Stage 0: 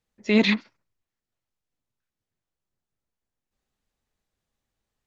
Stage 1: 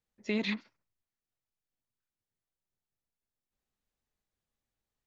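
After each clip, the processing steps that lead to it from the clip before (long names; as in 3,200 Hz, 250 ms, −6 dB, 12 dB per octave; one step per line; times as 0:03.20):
downward compressor, threshold −20 dBFS, peak gain reduction 7 dB
level −7.5 dB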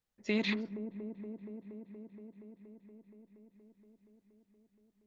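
delay with a low-pass on its return 236 ms, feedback 82%, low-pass 570 Hz, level −7.5 dB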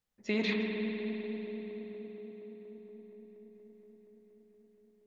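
spring reverb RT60 3.7 s, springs 50 ms, chirp 40 ms, DRR 1.5 dB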